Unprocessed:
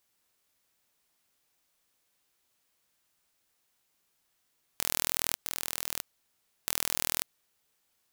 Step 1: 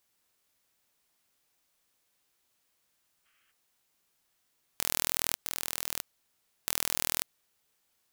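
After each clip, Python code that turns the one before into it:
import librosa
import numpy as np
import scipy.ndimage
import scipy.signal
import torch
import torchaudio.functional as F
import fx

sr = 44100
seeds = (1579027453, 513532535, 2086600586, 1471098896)

y = fx.spec_box(x, sr, start_s=3.26, length_s=0.25, low_hz=1100.0, high_hz=3300.0, gain_db=12)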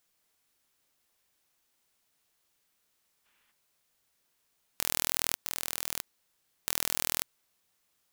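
y = x * np.sign(np.sin(2.0 * np.pi * 300.0 * np.arange(len(x)) / sr))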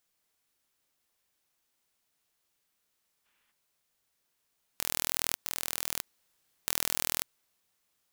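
y = fx.rider(x, sr, range_db=10, speed_s=2.0)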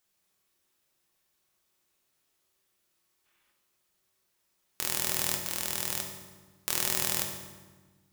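y = fx.rev_fdn(x, sr, rt60_s=1.3, lf_ratio=1.55, hf_ratio=0.75, size_ms=16.0, drr_db=0.5)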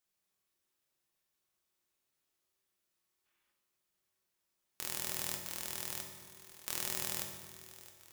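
y = fx.echo_feedback(x, sr, ms=665, feedback_pct=54, wet_db=-16.5)
y = y * 10.0 ** (-8.5 / 20.0)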